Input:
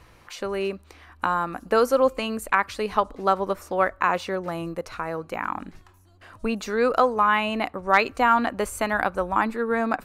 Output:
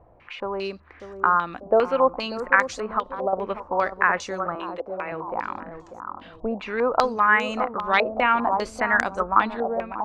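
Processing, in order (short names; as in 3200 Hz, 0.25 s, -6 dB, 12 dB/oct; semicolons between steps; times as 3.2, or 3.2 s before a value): ending faded out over 0.55 s; 2.84–3.33 compressor 4:1, threshold -25 dBFS, peak gain reduction 9.5 dB; 4.55–5.12 Chebyshev high-pass 270 Hz, order 10; on a send: analogue delay 0.592 s, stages 4096, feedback 38%, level -7.5 dB; on the sum: stepped low-pass 5 Hz 690–6600 Hz; gain -3.5 dB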